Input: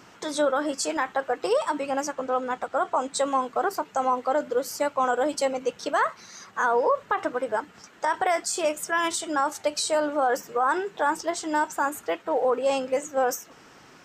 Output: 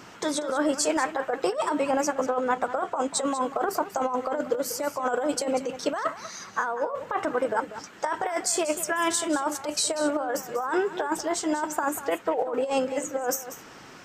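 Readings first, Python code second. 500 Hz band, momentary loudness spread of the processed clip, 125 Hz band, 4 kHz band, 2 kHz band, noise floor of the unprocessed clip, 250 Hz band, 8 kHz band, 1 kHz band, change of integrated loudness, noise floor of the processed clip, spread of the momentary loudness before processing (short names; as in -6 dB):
-1.5 dB, 5 LU, n/a, +0.5 dB, -2.5 dB, -52 dBFS, +3.0 dB, +3.0 dB, -3.0 dB, -1.5 dB, -47 dBFS, 5 LU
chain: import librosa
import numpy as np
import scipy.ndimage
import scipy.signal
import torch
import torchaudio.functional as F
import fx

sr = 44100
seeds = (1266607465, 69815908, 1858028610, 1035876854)

p1 = fx.dynamic_eq(x, sr, hz=4100.0, q=1.0, threshold_db=-44.0, ratio=4.0, max_db=-4)
p2 = fx.over_compress(p1, sr, threshold_db=-26.0, ratio=-0.5)
p3 = p2 + fx.echo_single(p2, sr, ms=191, db=-13.0, dry=0)
y = F.gain(torch.from_numpy(p3), 1.5).numpy()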